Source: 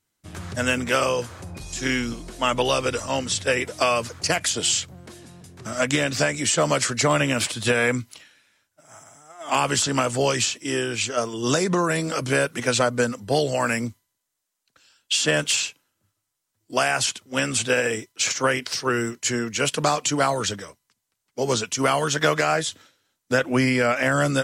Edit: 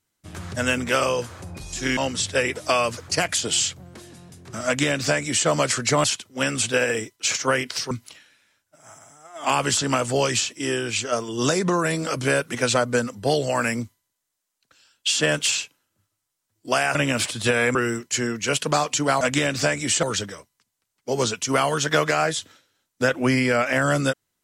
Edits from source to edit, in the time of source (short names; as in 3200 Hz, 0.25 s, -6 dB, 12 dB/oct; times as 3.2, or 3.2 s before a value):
1.97–3.09 cut
5.78–6.6 copy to 20.33
7.16–7.96 swap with 17–18.87